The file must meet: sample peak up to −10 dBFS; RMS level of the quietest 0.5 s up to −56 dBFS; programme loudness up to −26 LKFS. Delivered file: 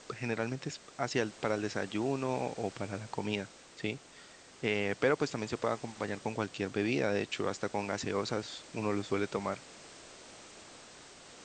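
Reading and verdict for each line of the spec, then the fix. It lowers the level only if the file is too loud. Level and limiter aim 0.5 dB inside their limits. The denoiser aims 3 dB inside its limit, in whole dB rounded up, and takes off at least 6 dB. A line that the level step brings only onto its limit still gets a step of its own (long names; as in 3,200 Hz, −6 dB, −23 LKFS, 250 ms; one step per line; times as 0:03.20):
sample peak −12.5 dBFS: in spec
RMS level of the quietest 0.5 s −55 dBFS: out of spec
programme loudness −35.0 LKFS: in spec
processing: broadband denoise 6 dB, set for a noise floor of −55 dBFS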